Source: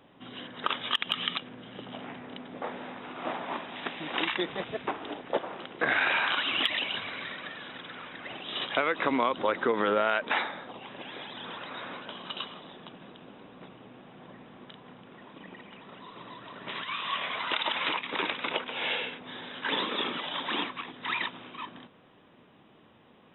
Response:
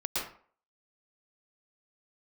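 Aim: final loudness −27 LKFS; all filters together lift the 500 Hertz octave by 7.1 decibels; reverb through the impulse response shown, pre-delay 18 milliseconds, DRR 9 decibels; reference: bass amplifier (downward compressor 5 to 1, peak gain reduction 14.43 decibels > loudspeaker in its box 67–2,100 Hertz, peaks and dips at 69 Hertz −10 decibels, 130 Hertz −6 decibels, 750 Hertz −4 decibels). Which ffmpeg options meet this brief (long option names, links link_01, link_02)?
-filter_complex "[0:a]equalizer=frequency=500:width_type=o:gain=9,asplit=2[link_01][link_02];[1:a]atrim=start_sample=2205,adelay=18[link_03];[link_02][link_03]afir=irnorm=-1:irlink=0,volume=-15dB[link_04];[link_01][link_04]amix=inputs=2:normalize=0,acompressor=threshold=-31dB:ratio=5,highpass=frequency=67:width=0.5412,highpass=frequency=67:width=1.3066,equalizer=frequency=69:width_type=q:width=4:gain=-10,equalizer=frequency=130:width_type=q:width=4:gain=-6,equalizer=frequency=750:width_type=q:width=4:gain=-4,lowpass=frequency=2100:width=0.5412,lowpass=frequency=2100:width=1.3066,volume=11dB"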